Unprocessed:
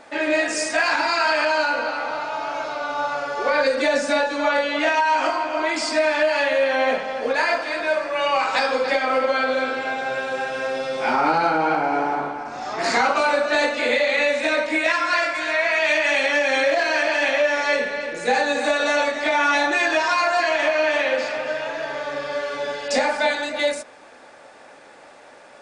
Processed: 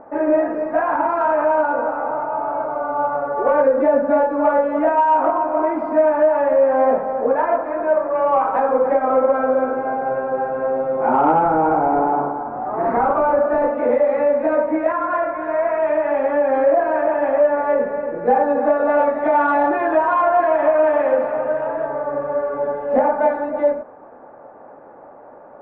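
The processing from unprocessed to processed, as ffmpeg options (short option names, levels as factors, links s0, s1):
-filter_complex "[0:a]asettb=1/sr,asplit=3[s0][s1][s2];[s0]atrim=end=11.444[s3];[s1]atrim=start=11.44:end=13.73,asetpts=PTS-STARTPTS,afade=t=in:d=0.004:c=qsin,afade=t=out:st=2.286:d=0.004:c=qsin,volume=6.68,asoftclip=hard,volume=0.15[s4];[s2]atrim=start=13.726[s5];[s3][s4]acrossfade=d=0.004:c1=hsin:c2=qsin[s6];[s6][s5]acrossfade=d=0.004:c1=qsin:c2=hsin,asettb=1/sr,asplit=3[s7][s8][s9];[s7]atrim=end=18.894[s10];[s8]atrim=start=18.89:end=21.87,asetpts=PTS-STARTPTS,afade=t=in:d=0.004:c=qsin,afade=t=out:st=2.976:d=0.004:c=qsin,equalizer=f=4200:w=0.51:g=6[s11];[s9]atrim=start=21.866[s12];[s10][s11]acrossfade=d=0.004:c1=hsin:c2=qsin[s13];[s13][s12]acrossfade=d=0.004:c1=qsin:c2=hsin,lowpass=f=1100:w=0.5412,lowpass=f=1100:w=1.3066,acontrast=50"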